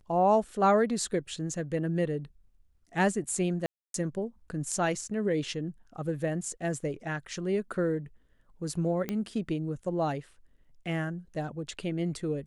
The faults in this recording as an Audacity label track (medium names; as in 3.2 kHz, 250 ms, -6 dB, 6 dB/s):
3.660000	3.940000	dropout 282 ms
9.090000	9.090000	pop -18 dBFS